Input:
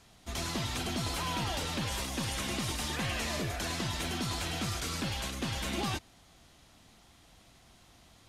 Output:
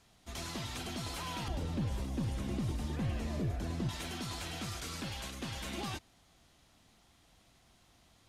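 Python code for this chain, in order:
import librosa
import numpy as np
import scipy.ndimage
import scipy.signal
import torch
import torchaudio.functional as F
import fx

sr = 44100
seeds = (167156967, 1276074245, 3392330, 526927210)

y = fx.tilt_shelf(x, sr, db=9.5, hz=640.0, at=(1.48, 3.89))
y = y * librosa.db_to_amplitude(-6.0)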